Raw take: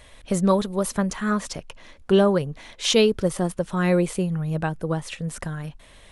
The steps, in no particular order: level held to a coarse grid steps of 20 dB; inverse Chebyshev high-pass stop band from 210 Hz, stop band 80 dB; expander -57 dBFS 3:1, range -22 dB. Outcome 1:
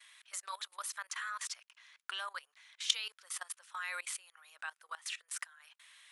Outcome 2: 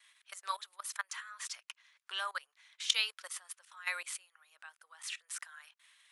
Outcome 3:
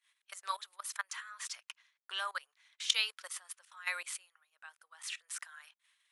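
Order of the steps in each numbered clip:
inverse Chebyshev high-pass > expander > level held to a coarse grid; expander > level held to a coarse grid > inverse Chebyshev high-pass; level held to a coarse grid > inverse Chebyshev high-pass > expander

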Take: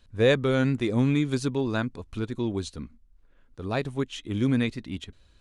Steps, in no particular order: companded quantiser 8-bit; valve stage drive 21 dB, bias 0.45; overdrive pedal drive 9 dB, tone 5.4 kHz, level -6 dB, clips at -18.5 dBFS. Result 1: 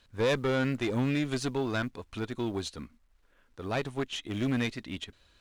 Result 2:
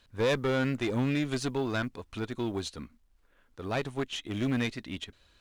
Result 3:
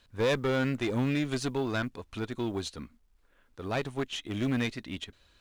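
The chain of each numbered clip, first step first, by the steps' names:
companded quantiser > overdrive pedal > valve stage; overdrive pedal > companded quantiser > valve stage; overdrive pedal > valve stage > companded quantiser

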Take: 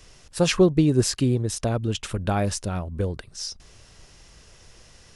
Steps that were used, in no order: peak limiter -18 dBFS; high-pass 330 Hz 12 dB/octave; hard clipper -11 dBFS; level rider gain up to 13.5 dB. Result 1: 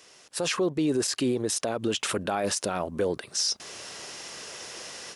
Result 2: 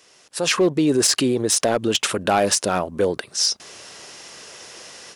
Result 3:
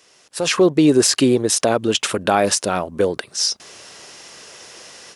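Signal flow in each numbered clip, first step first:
level rider > high-pass > peak limiter > hard clipper; peak limiter > level rider > high-pass > hard clipper; high-pass > hard clipper > peak limiter > level rider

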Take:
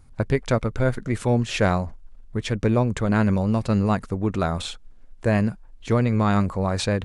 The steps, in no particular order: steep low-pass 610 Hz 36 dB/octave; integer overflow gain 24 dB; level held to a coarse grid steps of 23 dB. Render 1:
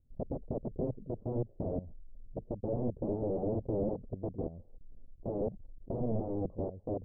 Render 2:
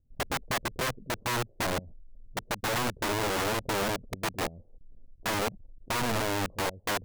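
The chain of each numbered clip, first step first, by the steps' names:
level held to a coarse grid > integer overflow > steep low-pass; level held to a coarse grid > steep low-pass > integer overflow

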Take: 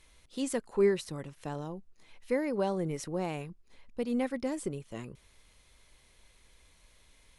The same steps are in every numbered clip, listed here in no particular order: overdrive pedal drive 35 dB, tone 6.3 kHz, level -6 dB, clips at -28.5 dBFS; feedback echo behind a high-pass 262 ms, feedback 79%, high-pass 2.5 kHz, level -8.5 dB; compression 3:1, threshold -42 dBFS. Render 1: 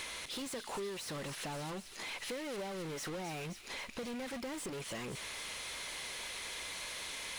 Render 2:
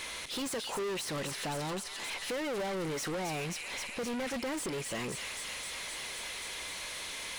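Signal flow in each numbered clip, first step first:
overdrive pedal > compression > feedback echo behind a high-pass; compression > feedback echo behind a high-pass > overdrive pedal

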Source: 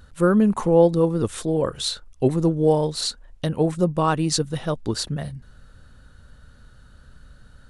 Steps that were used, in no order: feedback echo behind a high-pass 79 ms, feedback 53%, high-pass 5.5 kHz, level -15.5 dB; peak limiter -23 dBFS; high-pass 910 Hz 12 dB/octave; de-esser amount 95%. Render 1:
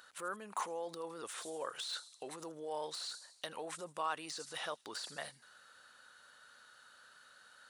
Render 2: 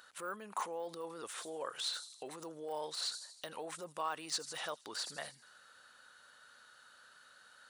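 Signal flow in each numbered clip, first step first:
peak limiter > feedback echo behind a high-pass > de-esser > high-pass; feedback echo behind a high-pass > de-esser > peak limiter > high-pass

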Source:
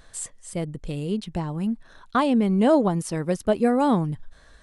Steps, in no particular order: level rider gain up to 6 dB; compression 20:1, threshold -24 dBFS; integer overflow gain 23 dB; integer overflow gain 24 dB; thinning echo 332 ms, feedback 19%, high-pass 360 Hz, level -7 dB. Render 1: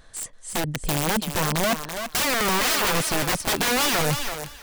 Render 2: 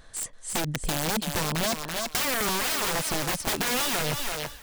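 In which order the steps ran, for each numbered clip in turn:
first integer overflow > compression > second integer overflow > level rider > thinning echo; first integer overflow > second integer overflow > thinning echo > level rider > compression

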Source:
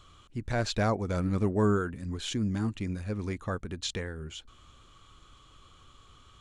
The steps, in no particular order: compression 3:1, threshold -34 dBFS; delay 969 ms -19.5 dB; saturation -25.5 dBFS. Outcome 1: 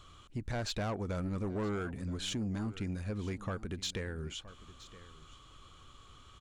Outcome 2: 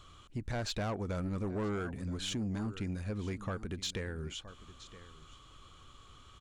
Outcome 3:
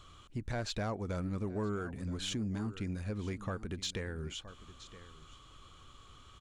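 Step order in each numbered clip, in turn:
saturation > delay > compression; delay > saturation > compression; delay > compression > saturation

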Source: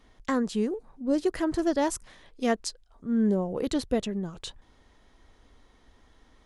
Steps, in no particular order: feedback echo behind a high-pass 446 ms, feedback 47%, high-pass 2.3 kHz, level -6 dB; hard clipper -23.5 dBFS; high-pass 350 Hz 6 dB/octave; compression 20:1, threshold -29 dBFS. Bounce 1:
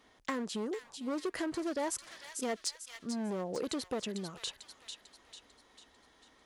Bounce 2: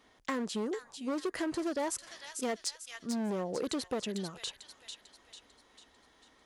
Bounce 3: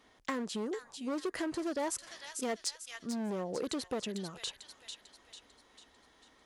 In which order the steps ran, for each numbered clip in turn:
hard clipper > feedback echo behind a high-pass > compression > high-pass; feedback echo behind a high-pass > hard clipper > high-pass > compression; feedback echo behind a high-pass > hard clipper > compression > high-pass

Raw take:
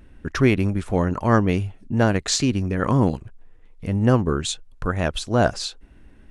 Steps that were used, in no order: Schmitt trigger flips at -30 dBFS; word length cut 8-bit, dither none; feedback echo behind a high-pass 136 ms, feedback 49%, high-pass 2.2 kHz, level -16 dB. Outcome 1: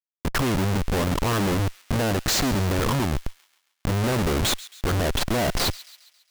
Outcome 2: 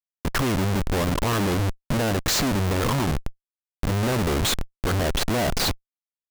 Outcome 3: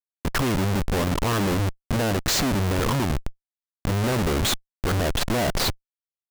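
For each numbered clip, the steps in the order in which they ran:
word length cut > Schmitt trigger > feedback echo behind a high-pass; word length cut > feedback echo behind a high-pass > Schmitt trigger; feedback echo behind a high-pass > word length cut > Schmitt trigger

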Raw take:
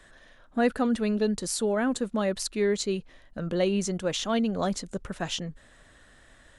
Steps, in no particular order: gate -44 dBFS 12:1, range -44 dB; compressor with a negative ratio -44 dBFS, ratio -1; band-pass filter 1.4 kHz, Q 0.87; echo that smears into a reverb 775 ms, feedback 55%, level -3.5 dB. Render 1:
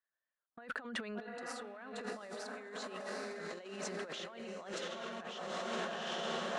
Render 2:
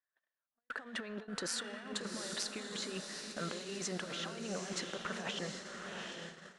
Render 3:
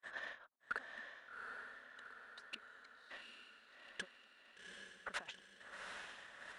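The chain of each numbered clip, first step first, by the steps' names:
band-pass filter > gate > echo that smears into a reverb > compressor with a negative ratio; band-pass filter > compressor with a negative ratio > echo that smears into a reverb > gate; compressor with a negative ratio > band-pass filter > gate > echo that smears into a reverb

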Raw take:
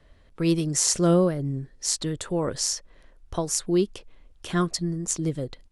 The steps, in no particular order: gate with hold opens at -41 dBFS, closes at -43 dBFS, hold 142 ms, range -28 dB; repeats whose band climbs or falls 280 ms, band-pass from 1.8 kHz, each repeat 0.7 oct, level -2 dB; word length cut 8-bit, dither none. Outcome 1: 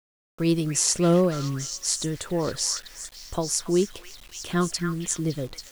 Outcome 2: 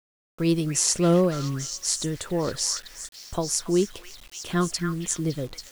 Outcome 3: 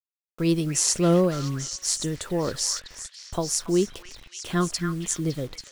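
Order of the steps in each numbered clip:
repeats whose band climbs or falls > gate with hold > word length cut; gate with hold > repeats whose band climbs or falls > word length cut; gate with hold > word length cut > repeats whose band climbs or falls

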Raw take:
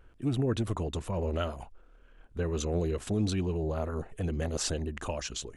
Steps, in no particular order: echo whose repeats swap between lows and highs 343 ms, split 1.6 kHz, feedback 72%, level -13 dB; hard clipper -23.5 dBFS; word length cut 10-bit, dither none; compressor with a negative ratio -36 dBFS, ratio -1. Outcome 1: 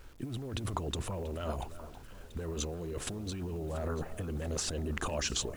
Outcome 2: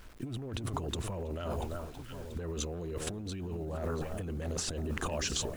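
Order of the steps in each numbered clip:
hard clipper > compressor with a negative ratio > echo whose repeats swap between lows and highs > word length cut; hard clipper > echo whose repeats swap between lows and highs > word length cut > compressor with a negative ratio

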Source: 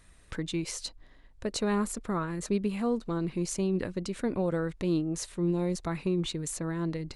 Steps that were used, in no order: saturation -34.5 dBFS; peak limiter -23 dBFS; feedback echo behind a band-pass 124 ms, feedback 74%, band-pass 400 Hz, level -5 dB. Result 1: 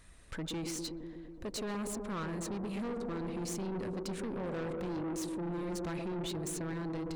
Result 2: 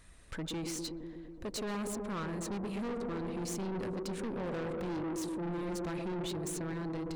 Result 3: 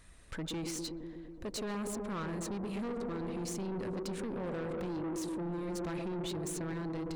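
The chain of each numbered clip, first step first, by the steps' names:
peak limiter > feedback echo behind a band-pass > saturation; feedback echo behind a band-pass > saturation > peak limiter; feedback echo behind a band-pass > peak limiter > saturation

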